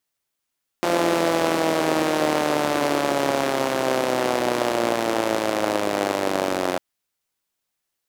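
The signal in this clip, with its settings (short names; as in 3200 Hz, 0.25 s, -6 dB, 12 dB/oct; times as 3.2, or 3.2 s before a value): four-cylinder engine model, changing speed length 5.95 s, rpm 5200, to 2700, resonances 340/550 Hz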